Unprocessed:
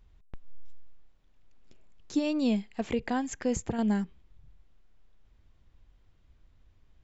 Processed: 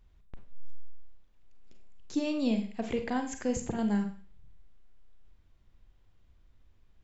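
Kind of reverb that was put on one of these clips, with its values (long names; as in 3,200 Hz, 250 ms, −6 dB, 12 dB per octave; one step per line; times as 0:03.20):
four-comb reverb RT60 0.43 s, combs from 32 ms, DRR 6 dB
level −2.5 dB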